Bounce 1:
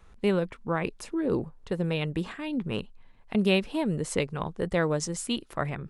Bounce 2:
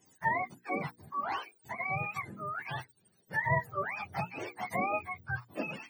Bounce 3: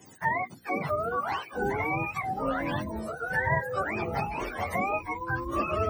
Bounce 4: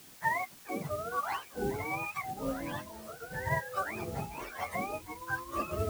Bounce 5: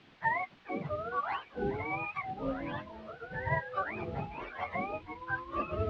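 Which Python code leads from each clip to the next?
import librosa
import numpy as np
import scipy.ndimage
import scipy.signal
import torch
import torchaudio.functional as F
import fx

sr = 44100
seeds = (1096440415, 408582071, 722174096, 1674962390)

y1 = fx.octave_mirror(x, sr, pivot_hz=610.0)
y1 = fx.low_shelf(y1, sr, hz=150.0, db=-11.5)
y1 = fx.hum_notches(y1, sr, base_hz=60, count=8)
y1 = F.gain(torch.from_numpy(y1), -3.0).numpy()
y2 = fx.echo_pitch(y1, sr, ms=526, semitones=-7, count=3, db_per_echo=-3.0)
y2 = fx.band_squash(y2, sr, depth_pct=40)
y2 = F.gain(torch.from_numpy(y2), 3.0).numpy()
y3 = fx.harmonic_tremolo(y2, sr, hz=1.2, depth_pct=70, crossover_hz=590.0)
y3 = fx.quant_dither(y3, sr, seeds[0], bits=8, dither='triangular')
y3 = fx.upward_expand(y3, sr, threshold_db=-39.0, expansion=1.5)
y4 = scipy.signal.sosfilt(scipy.signal.butter(4, 3400.0, 'lowpass', fs=sr, output='sos'), y3)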